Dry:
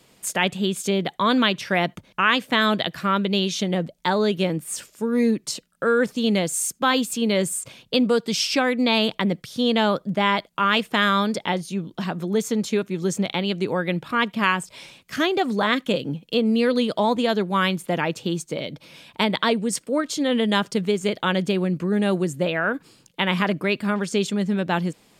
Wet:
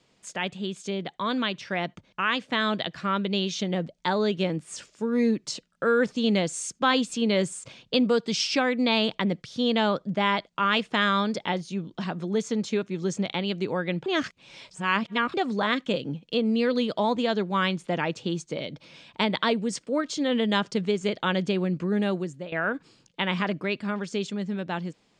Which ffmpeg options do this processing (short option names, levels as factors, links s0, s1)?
-filter_complex "[0:a]asplit=4[s0][s1][s2][s3];[s0]atrim=end=14.062[s4];[s1]atrim=start=14.058:end=15.342,asetpts=PTS-STARTPTS,areverse[s5];[s2]atrim=start=15.338:end=22.52,asetpts=PTS-STARTPTS,afade=t=out:st=6.662:d=0.52:silence=0.177828[s6];[s3]atrim=start=22.52,asetpts=PTS-STARTPTS,afade=t=in:d=0.004:c=hsin:silence=0.177828[s7];[s4][s5]acrossfade=d=0.004:c1=hsin:c2=hsin[s8];[s6][s7]concat=n=2:v=0:a=1[s9];[s8][s9]acrossfade=d=0.004:c1=hsin:c2=hsin,lowpass=f=7100:w=0.5412,lowpass=f=7100:w=1.3066,dynaudnorm=f=750:g=7:m=3.76,volume=0.376"